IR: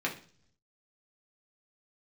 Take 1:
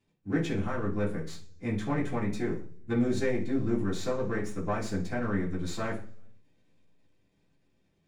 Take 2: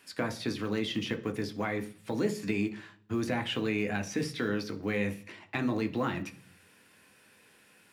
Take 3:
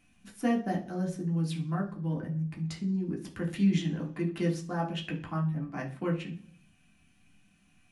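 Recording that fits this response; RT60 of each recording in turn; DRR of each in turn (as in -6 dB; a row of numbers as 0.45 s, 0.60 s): 3; 0.50 s, no single decay rate, 0.50 s; -7.5 dB, 6.0 dB, -2.0 dB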